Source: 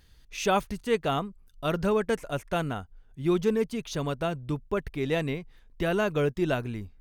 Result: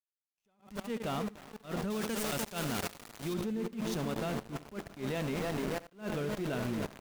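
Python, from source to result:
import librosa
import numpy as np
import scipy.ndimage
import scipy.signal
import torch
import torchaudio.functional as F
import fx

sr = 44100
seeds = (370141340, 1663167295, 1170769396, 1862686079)

y = fx.diode_clip(x, sr, knee_db=-14.0)
y = fx.peak_eq(y, sr, hz=220.0, db=9.5, octaves=0.48)
y = fx.echo_tape(y, sr, ms=299, feedback_pct=78, wet_db=-9, lp_hz=1600.0, drive_db=10.0, wow_cents=24)
y = fx.over_compress(y, sr, threshold_db=-34.0, ratio=-0.5, at=(5.38, 5.91), fade=0.02)
y = np.where(np.abs(y) >= 10.0 ** (-30.5 / 20.0), y, 0.0)
y = fx.high_shelf(y, sr, hz=2500.0, db=11.5, at=(1.9, 3.34))
y = fx.echo_feedback(y, sr, ms=74, feedback_pct=19, wet_db=-14.5)
y = fx.level_steps(y, sr, step_db=17)
y = fx.attack_slew(y, sr, db_per_s=200.0)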